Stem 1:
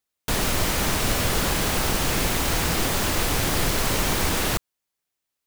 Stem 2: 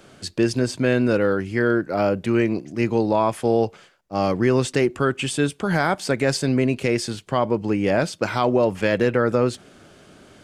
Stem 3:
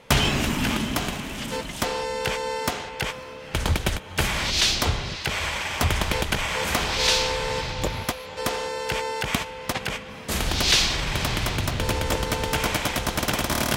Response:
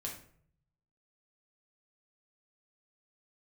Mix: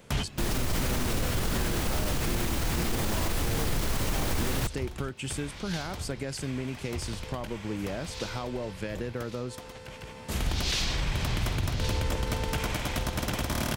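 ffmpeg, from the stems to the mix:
-filter_complex "[0:a]adelay=100,volume=-5.5dB[a];[1:a]highshelf=f=6.5k:g=11.5,acompressor=threshold=-22dB:ratio=6,volume=-11dB,asplit=2[b][c];[2:a]volume=-7.5dB,asplit=2[d][e];[e]volume=-12.5dB[f];[c]apad=whole_len=607079[g];[d][g]sidechaincompress=threshold=-53dB:ratio=16:attack=7:release=616[h];[f]aecho=0:1:1118|2236|3354|4472:1|0.27|0.0729|0.0197[i];[a][b][h][i]amix=inputs=4:normalize=0,lowshelf=f=210:g=8.5,alimiter=limit=-19dB:level=0:latency=1:release=42"

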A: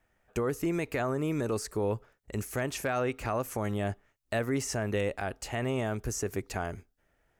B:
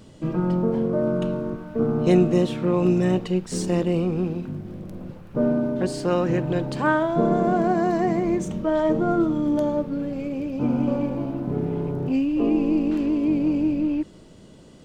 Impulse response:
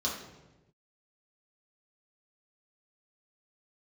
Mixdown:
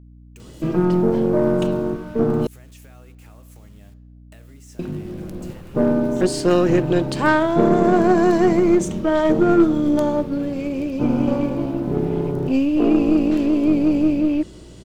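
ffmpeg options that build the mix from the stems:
-filter_complex "[0:a]acrusher=bits=6:mix=0:aa=0.000001,acompressor=threshold=-39dB:ratio=6,volume=-10.5dB,asplit=2[a][b];[b]volume=-15.5dB[c];[1:a]equalizer=f=360:t=o:w=0.31:g=6.5,adelay=400,volume=2.5dB,asplit=3[d][e][f];[d]atrim=end=2.47,asetpts=PTS-STARTPTS,afade=t=out:st=2.466:d=0.004:c=hsin[g];[e]atrim=start=2.47:end=4.79,asetpts=PTS-STARTPTS,volume=0[h];[f]atrim=start=4.79,asetpts=PTS-STARTPTS,afade=t=in:d=0.004:c=hsin[i];[g][h][i]concat=n=3:v=0:a=1[j];[2:a]atrim=start_sample=2205[k];[c][k]afir=irnorm=-1:irlink=0[l];[a][j][l]amix=inputs=3:normalize=0,highshelf=f=2.4k:g=7,aeval=exprs='0.631*(cos(1*acos(clip(val(0)/0.631,-1,1)))-cos(1*PI/2))+0.0355*(cos(6*acos(clip(val(0)/0.631,-1,1)))-cos(6*PI/2))':c=same,aeval=exprs='val(0)+0.00708*(sin(2*PI*60*n/s)+sin(2*PI*2*60*n/s)/2+sin(2*PI*3*60*n/s)/3+sin(2*PI*4*60*n/s)/4+sin(2*PI*5*60*n/s)/5)':c=same"

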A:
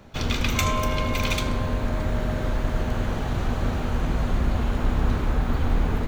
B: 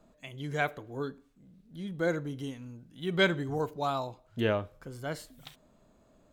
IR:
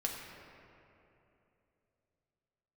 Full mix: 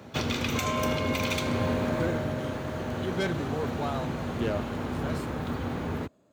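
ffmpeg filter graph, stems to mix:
-filter_complex "[0:a]volume=-0.5dB,afade=t=out:st=1.69:d=0.65:silence=0.446684,asplit=2[a][b];[b]volume=-8dB[c];[1:a]asoftclip=type=tanh:threshold=-24dB,volume=-2dB[d];[2:a]atrim=start_sample=2205[e];[c][e]afir=irnorm=-1:irlink=0[f];[a][d][f]amix=inputs=3:normalize=0,highpass=f=84:w=0.5412,highpass=f=84:w=1.3066,equalizer=f=400:w=1.5:g=3,alimiter=limit=-16.5dB:level=0:latency=1:release=413"

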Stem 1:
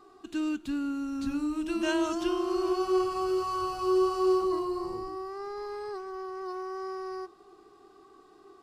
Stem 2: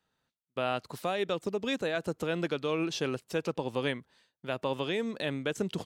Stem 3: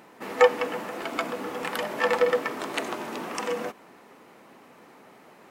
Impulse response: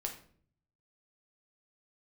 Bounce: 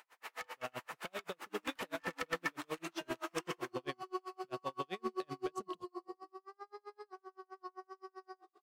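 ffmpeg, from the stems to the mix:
-filter_complex "[0:a]highpass=510,highshelf=f=3.7k:g=-7,bandreject=f=900:w=6,adelay=1150,volume=-8dB,asplit=2[a][b];[b]volume=-3dB[c];[1:a]volume=-7.5dB[d];[2:a]highpass=1.1k,alimiter=limit=-15dB:level=0:latency=1:release=370,volume=-3.5dB,asplit=2[e][f];[f]volume=-10.5dB[g];[3:a]atrim=start_sample=2205[h];[c][g]amix=inputs=2:normalize=0[i];[i][h]afir=irnorm=-1:irlink=0[j];[a][d][e][j]amix=inputs=4:normalize=0,asoftclip=type=hard:threshold=-27.5dB,aeval=exprs='val(0)*pow(10,-40*(0.5-0.5*cos(2*PI*7.7*n/s))/20)':c=same"

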